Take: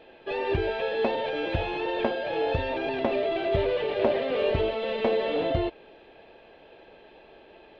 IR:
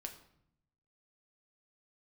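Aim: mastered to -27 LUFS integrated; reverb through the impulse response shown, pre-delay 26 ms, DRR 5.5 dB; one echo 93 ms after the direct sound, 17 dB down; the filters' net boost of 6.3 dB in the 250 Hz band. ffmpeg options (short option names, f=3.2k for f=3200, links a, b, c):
-filter_complex "[0:a]equalizer=f=250:t=o:g=8.5,aecho=1:1:93:0.141,asplit=2[a][b];[1:a]atrim=start_sample=2205,adelay=26[c];[b][c]afir=irnorm=-1:irlink=0,volume=-2dB[d];[a][d]amix=inputs=2:normalize=0,volume=-2.5dB"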